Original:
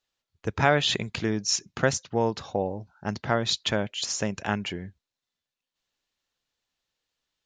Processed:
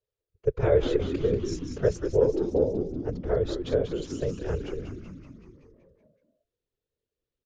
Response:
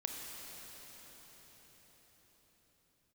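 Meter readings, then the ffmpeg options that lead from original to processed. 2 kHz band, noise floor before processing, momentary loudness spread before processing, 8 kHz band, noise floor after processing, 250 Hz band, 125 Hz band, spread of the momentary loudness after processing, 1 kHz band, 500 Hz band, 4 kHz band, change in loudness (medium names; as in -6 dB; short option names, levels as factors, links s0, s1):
-14.0 dB, under -85 dBFS, 12 LU, -16.5 dB, under -85 dBFS, 0.0 dB, +0.5 dB, 13 LU, -12.0 dB, +4.5 dB, -15.5 dB, -0.5 dB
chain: -filter_complex "[0:a]afftfilt=real='hypot(re,im)*cos(2*PI*random(0))':imag='hypot(re,im)*sin(2*PI*random(1))':win_size=512:overlap=0.75,firequalizer=gain_entry='entry(110,0);entry(240,-24);entry(430,7);entry(770,-17);entry(5500,-21);entry(9400,-19)':delay=0.05:min_phase=1,asplit=9[s0][s1][s2][s3][s4][s5][s6][s7][s8];[s1]adelay=189,afreqshift=-86,volume=0.447[s9];[s2]adelay=378,afreqshift=-172,volume=0.275[s10];[s3]adelay=567,afreqshift=-258,volume=0.172[s11];[s4]adelay=756,afreqshift=-344,volume=0.106[s12];[s5]adelay=945,afreqshift=-430,volume=0.0661[s13];[s6]adelay=1134,afreqshift=-516,volume=0.0407[s14];[s7]adelay=1323,afreqshift=-602,volume=0.0254[s15];[s8]adelay=1512,afreqshift=-688,volume=0.0157[s16];[s0][s9][s10][s11][s12][s13][s14][s15][s16]amix=inputs=9:normalize=0,volume=2.82"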